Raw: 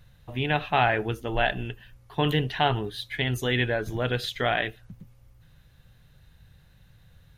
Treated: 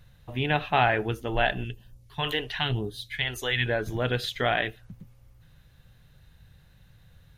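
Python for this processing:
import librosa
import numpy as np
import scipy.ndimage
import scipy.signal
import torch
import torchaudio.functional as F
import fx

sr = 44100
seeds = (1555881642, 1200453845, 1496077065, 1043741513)

y = fx.phaser_stages(x, sr, stages=2, low_hz=150.0, high_hz=2100.0, hz=1.0, feedback_pct=25, at=(1.64, 3.66))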